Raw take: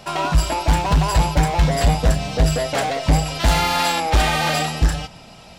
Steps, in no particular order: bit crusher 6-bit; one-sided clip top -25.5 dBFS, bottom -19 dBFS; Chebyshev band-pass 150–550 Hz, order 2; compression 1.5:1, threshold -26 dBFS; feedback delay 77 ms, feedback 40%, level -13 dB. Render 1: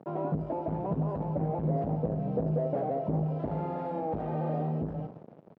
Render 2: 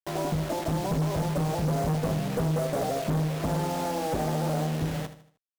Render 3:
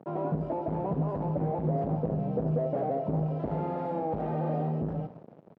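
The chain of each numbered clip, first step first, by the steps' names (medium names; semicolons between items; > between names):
feedback delay > compression > one-sided clip > bit crusher > Chebyshev band-pass; Chebyshev band-pass > bit crusher > feedback delay > one-sided clip > compression; one-sided clip > feedback delay > bit crusher > Chebyshev band-pass > compression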